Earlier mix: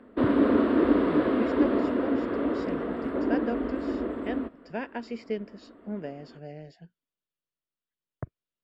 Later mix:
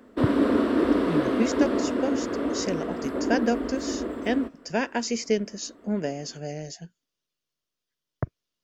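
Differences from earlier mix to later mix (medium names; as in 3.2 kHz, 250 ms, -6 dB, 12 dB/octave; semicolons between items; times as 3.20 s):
speech +7.5 dB; master: remove boxcar filter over 7 samples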